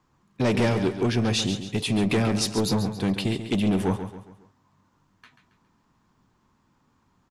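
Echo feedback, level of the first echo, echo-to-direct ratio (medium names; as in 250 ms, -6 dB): 41%, -10.0 dB, -9.0 dB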